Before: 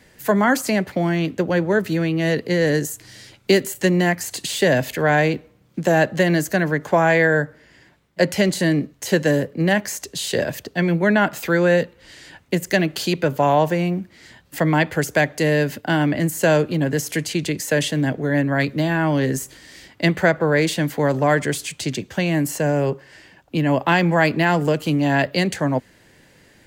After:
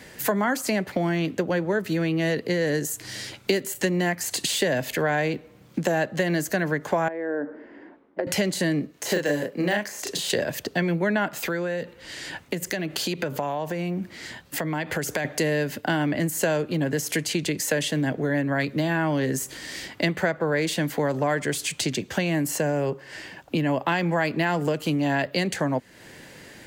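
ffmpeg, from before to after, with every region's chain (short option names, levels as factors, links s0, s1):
-filter_complex "[0:a]asettb=1/sr,asplit=3[s0][s1][s2];[s0]atrim=end=7.084[s3];[s1]atrim=start=7.08:end=8.27,asetpts=PTS-STARTPTS,afade=t=in:d=0.004:c=qsin,afade=t=out:st=1.186:d=0.004:c=qsin,lowpass=1200,lowshelf=f=190:t=q:w=3:g=-13,acompressor=threshold=0.0631:ratio=12:attack=3.2:release=140:knee=1:detection=peak[s4];[s2]atrim=start=8.266[s5];[s3][s4]acrossfade=d=0.004:c1=hsin:c2=qsin[s6];[s6][s5]acrossfade=d=0.004:c1=qsin:c2=hsin,asettb=1/sr,asplit=3[s7][s8][s9];[s7]atrim=end=8.914[s10];[s8]atrim=start=8.91:end=10.3,asetpts=PTS-STARTPTS,afade=t=in:d=0.004:c=qsin,afade=t=out:st=1.386:d=0.004:c=qsin,highpass=f=340:p=1,asplit=2[s11][s12];[s12]adelay=34,volume=0.75[s13];[s11][s13]amix=inputs=2:normalize=0,atrim=end_sample=61299,deesser=0.6[s14];[s9]atrim=start=10.296[s15];[s10][s14]acrossfade=d=0.004:c1=hsin:c2=qsin[s16];[s16][s15]acrossfade=d=0.004:c1=qsin:c2=hsin,asettb=1/sr,asplit=3[s17][s18][s19];[s17]atrim=end=11.474[s20];[s18]atrim=start=11.47:end=15.25,asetpts=PTS-STARTPTS,afade=t=in:d=0.004:c=qsin,afade=t=out:st=3.776:d=0.004:c=qsin,acompressor=threshold=0.0447:ratio=3:attack=3.2:release=140:knee=1:detection=peak,tremolo=f=1.1:d=0.34[s21];[s19]atrim=start=15.246[s22];[s20][s21]acrossfade=d=0.004:c1=hsin:c2=qsin[s23];[s23][s22]acrossfade=d=0.004:c1=qsin:c2=hsin,lowshelf=f=89:g=-9,acompressor=threshold=0.0224:ratio=3,volume=2.37"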